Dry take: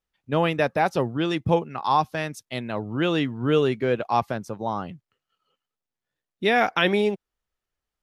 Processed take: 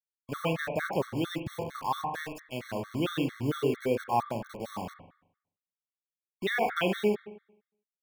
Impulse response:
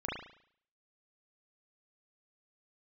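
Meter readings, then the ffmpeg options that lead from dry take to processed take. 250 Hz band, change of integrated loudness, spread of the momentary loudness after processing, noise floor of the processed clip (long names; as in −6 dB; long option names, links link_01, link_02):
−7.0 dB, −7.5 dB, 11 LU, below −85 dBFS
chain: -filter_complex "[0:a]acrusher=bits=5:mix=0:aa=0.000001,asplit=2[link_01][link_02];[1:a]atrim=start_sample=2205,asetrate=36162,aresample=44100,lowpass=5700[link_03];[link_02][link_03]afir=irnorm=-1:irlink=0,volume=-8.5dB[link_04];[link_01][link_04]amix=inputs=2:normalize=0,afftfilt=real='re*gt(sin(2*PI*4.4*pts/sr)*(1-2*mod(floor(b*sr/1024/1100),2)),0)':imag='im*gt(sin(2*PI*4.4*pts/sr)*(1-2*mod(floor(b*sr/1024/1100),2)),0)':win_size=1024:overlap=0.75,volume=-7.5dB"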